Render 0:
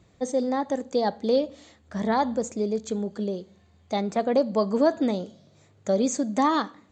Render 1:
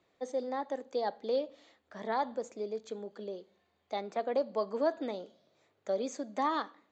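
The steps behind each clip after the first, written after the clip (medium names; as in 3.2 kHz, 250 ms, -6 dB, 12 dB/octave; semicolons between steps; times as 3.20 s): three-band isolator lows -19 dB, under 300 Hz, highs -15 dB, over 5.2 kHz; trim -7.5 dB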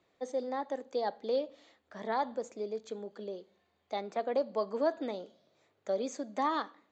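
no audible change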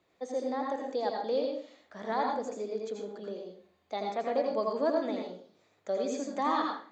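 reverberation RT60 0.45 s, pre-delay 78 ms, DRR 0 dB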